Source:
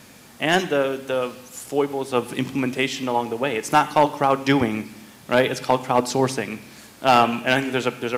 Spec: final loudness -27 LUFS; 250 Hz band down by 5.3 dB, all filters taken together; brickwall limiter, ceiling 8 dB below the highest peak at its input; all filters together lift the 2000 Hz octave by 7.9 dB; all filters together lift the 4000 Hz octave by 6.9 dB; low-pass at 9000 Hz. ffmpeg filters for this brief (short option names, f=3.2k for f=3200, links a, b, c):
-af "lowpass=9k,equalizer=f=250:t=o:g=-6.5,equalizer=f=2k:t=o:g=9,equalizer=f=4k:t=o:g=5.5,volume=-5dB,alimiter=limit=-12dB:level=0:latency=1"